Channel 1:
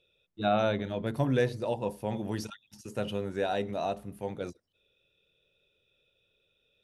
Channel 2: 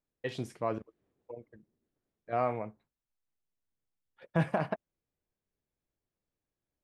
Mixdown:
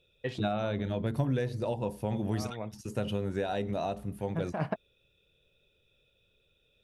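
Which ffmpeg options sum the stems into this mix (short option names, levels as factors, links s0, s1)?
-filter_complex "[0:a]acompressor=threshold=0.0316:ratio=6,volume=1.12,asplit=2[s0][s1];[1:a]volume=1[s2];[s1]apad=whole_len=301588[s3];[s2][s3]sidechaincompress=threshold=0.00316:ratio=6:attack=16:release=119[s4];[s0][s4]amix=inputs=2:normalize=0,lowshelf=f=150:g=9.5"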